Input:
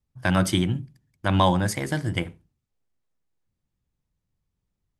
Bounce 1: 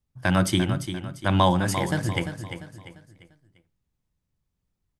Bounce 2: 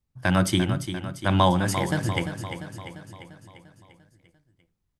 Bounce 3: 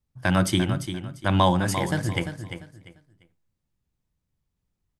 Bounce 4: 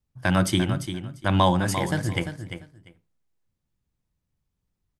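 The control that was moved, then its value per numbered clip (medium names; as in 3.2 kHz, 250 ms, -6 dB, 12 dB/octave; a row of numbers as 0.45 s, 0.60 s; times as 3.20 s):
feedback delay, feedback: 38%, 57%, 25%, 17%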